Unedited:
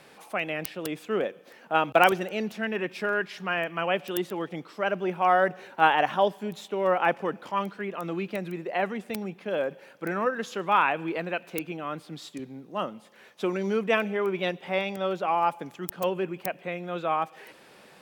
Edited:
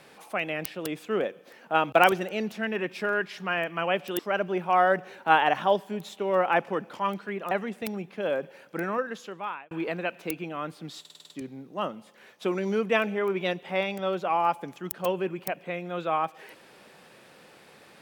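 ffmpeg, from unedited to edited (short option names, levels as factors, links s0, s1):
-filter_complex "[0:a]asplit=10[s0][s1][s2][s3][s4][s5][s6][s7][s8][s9];[s0]atrim=end=4.192[s10];[s1]atrim=start=4.708:end=8.032[s11];[s2]atrim=start=8.788:end=10.99,asetpts=PTS-STARTPTS,afade=t=out:st=1.252:d=0.95[s12];[s3]atrim=start=10.99:end=12.332,asetpts=PTS-STARTPTS,afade=t=in:d=0.004:c=hsin[s13];[s4]atrim=start=12.278:end=12.332[s14];[s5]atrim=start=12.278:end=12.332[s15];[s6]atrim=start=12.278:end=12.332[s16];[s7]atrim=start=12.278:end=12.332[s17];[s8]atrim=start=12.278:end=12.332[s18];[s9]atrim=start=12.278[s19];[s10][s11]acrossfade=d=0.004:c1=hsin:c2=hsin[s20];[s12][s13]concat=n=2:v=0:a=1[s21];[s20][s21]acrossfade=d=0.004:c1=hsin:c2=hsin[s22];[s22][s14]acrossfade=d=0.004:c1=hsin:c2=hsin[s23];[s23][s15]acrossfade=d=0.004:c1=hsin:c2=hsin[s24];[s24][s16]acrossfade=d=0.004:c1=hsin:c2=hsin[s25];[s25][s17]acrossfade=d=0.004:c1=hsin:c2=hsin[s26];[s26][s18]acrossfade=d=0.004:c1=hsin:c2=hsin[s27];[s27][s19]acrossfade=d=0.004:c1=hsin:c2=hsin"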